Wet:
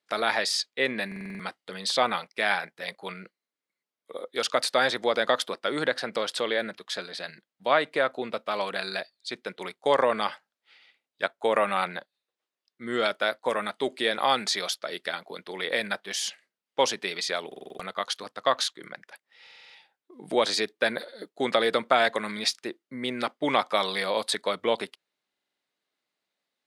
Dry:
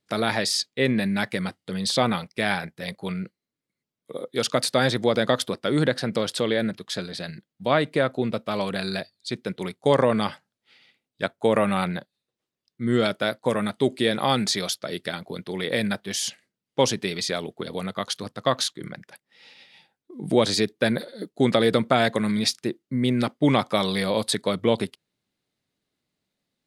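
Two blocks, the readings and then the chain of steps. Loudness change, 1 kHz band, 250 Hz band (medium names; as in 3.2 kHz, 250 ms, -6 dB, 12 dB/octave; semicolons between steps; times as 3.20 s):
-3.0 dB, +0.5 dB, -11.0 dB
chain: Bessel high-pass 1.1 kHz, order 2; tilt EQ -3 dB/octave; buffer glitch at 1.07/17.47/19.42/25.29 s, samples 2048, times 6; trim +4.5 dB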